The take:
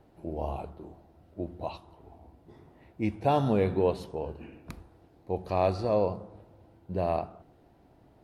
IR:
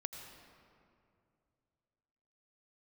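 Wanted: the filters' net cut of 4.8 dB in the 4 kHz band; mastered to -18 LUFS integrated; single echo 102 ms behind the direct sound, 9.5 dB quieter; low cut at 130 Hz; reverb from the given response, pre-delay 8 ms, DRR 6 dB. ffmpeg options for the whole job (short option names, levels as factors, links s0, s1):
-filter_complex "[0:a]highpass=130,equalizer=f=4000:t=o:g=-6,aecho=1:1:102:0.335,asplit=2[s0][s1];[1:a]atrim=start_sample=2205,adelay=8[s2];[s1][s2]afir=irnorm=-1:irlink=0,volume=0.596[s3];[s0][s3]amix=inputs=2:normalize=0,volume=3.76"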